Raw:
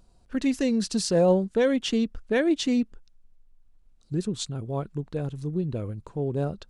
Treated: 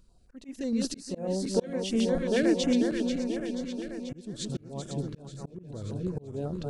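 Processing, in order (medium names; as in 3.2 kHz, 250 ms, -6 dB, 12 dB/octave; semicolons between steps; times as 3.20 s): backward echo that repeats 243 ms, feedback 78%, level -6 dB; slow attack 411 ms; step-sequenced notch 11 Hz 740–4200 Hz; trim -2 dB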